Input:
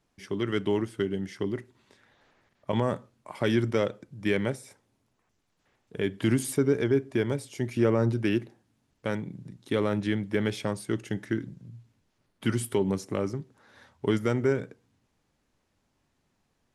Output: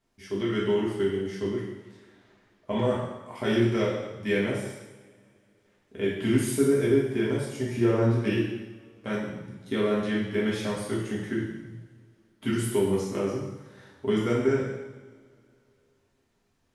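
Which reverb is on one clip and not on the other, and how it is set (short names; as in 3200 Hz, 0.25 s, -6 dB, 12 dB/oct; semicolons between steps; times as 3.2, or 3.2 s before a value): two-slope reverb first 0.98 s, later 3 s, from -22 dB, DRR -6.5 dB; gain -6 dB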